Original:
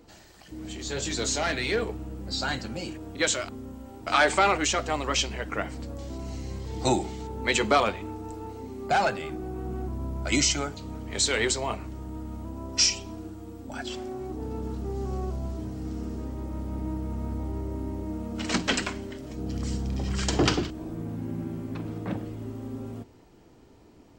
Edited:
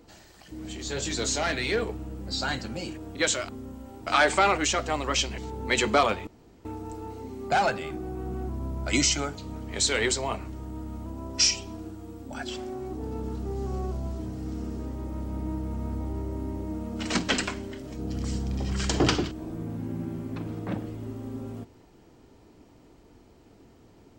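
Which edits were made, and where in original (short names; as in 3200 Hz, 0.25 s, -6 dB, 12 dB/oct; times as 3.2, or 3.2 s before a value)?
5.38–7.15 cut
8.04 insert room tone 0.38 s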